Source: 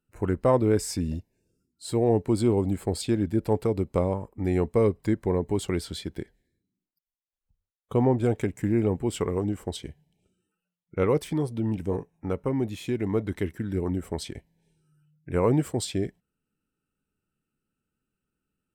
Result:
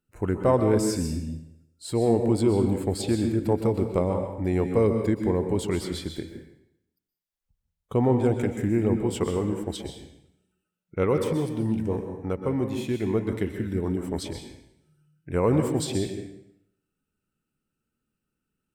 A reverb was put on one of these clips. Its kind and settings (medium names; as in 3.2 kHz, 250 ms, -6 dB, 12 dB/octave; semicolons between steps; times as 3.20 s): plate-style reverb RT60 0.76 s, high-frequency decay 0.9×, pre-delay 110 ms, DRR 5.5 dB